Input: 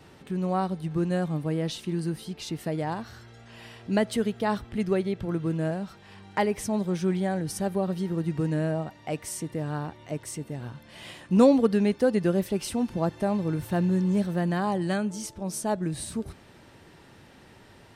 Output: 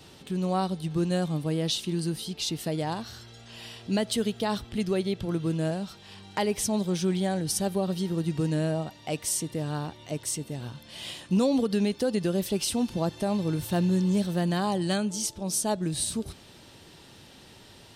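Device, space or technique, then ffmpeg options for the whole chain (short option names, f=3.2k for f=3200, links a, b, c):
over-bright horn tweeter: -af "highshelf=f=2.6k:t=q:w=1.5:g=7,alimiter=limit=-16.5dB:level=0:latency=1:release=92"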